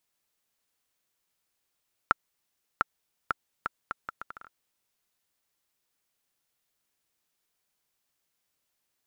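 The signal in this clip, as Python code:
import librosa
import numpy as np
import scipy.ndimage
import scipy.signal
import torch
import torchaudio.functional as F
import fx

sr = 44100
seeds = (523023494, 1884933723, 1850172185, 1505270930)

y = fx.bouncing_ball(sr, first_gap_s=0.7, ratio=0.71, hz=1360.0, decay_ms=19.0, level_db=-6.0)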